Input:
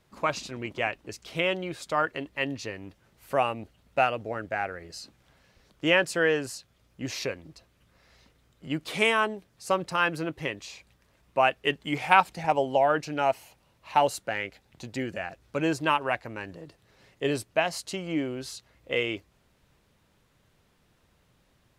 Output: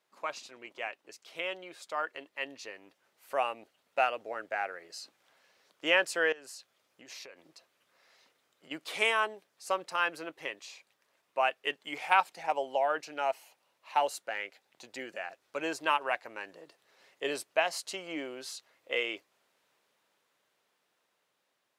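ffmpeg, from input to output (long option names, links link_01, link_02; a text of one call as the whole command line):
ffmpeg -i in.wav -filter_complex "[0:a]asettb=1/sr,asplit=3[link_01][link_02][link_03];[link_01]atrim=end=6.324[link_04];[link_02]atrim=start=6.32:end=8.71,asetpts=PTS-STARTPTS,afade=type=in:duration=0.004:curve=qsin,afade=type=out:start_time=2.386:duration=0.004:curve=qsin,acompressor=threshold=-39dB:ratio=16:attack=3.2:release=140:knee=1:detection=peak[link_05];[link_03]atrim=start=8.706[link_06];[link_04][link_05]acrossfade=duration=0.004:curve1=hsin:curve2=qsin[link_07];[link_07][link_06]acrossfade=duration=0.004:curve1=qsin:curve2=hsin,highpass=490,dynaudnorm=framelen=890:gausssize=7:maxgain=8dB,volume=-8.5dB" out.wav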